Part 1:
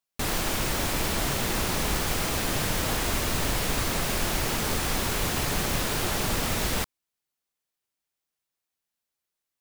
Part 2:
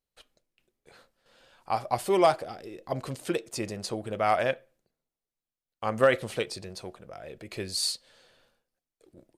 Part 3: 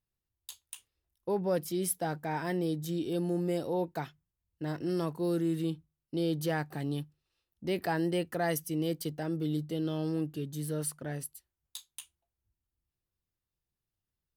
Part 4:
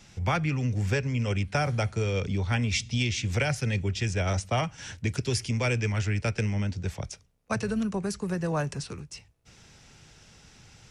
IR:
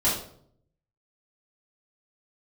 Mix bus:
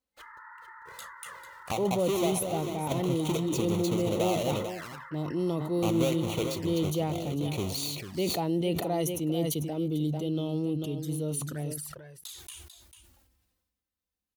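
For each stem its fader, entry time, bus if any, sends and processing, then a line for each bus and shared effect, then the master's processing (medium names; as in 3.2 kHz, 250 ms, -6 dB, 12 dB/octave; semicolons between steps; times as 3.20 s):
-3.0 dB, 0.00 s, no send, no echo send, FFT band-pass 860–2100 Hz; peak limiter -35 dBFS, peak gain reduction 11 dB
-0.5 dB, 0.00 s, no send, echo send -10.5 dB, square wave that keeps the level; compression 12:1, threshold -26 dBFS, peak gain reduction 12.5 dB
+2.5 dB, 0.50 s, no send, echo send -11 dB, none
mute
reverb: none
echo: delay 445 ms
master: high-pass 54 Hz; touch-sensitive flanger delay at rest 3.9 ms, full sweep at -29.5 dBFS; decay stretcher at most 42 dB/s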